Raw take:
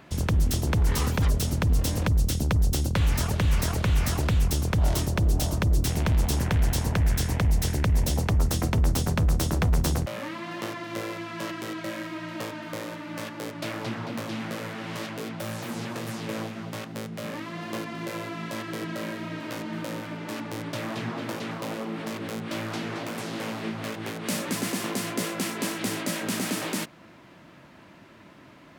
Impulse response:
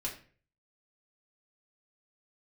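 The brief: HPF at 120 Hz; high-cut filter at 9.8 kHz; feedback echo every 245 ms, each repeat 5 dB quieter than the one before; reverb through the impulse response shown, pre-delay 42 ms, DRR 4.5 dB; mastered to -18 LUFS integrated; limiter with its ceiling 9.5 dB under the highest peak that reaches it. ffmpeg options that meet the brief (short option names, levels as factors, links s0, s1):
-filter_complex "[0:a]highpass=120,lowpass=9800,alimiter=limit=0.075:level=0:latency=1,aecho=1:1:245|490|735|980|1225|1470|1715:0.562|0.315|0.176|0.0988|0.0553|0.031|0.0173,asplit=2[s0][s1];[1:a]atrim=start_sample=2205,adelay=42[s2];[s1][s2]afir=irnorm=-1:irlink=0,volume=0.531[s3];[s0][s3]amix=inputs=2:normalize=0,volume=3.98"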